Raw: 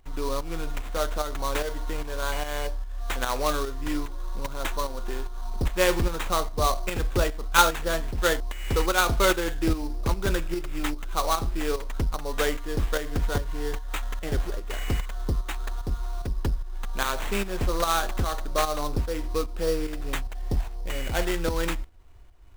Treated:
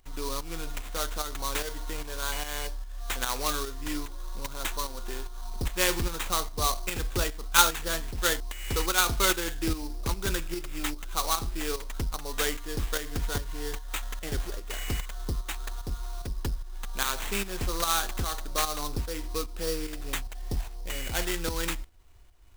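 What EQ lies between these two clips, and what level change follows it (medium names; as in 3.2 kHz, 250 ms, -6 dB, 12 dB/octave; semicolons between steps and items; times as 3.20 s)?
dynamic bell 590 Hz, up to -6 dB, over -41 dBFS, Q 3.6; treble shelf 2.7 kHz +9.5 dB; -5.0 dB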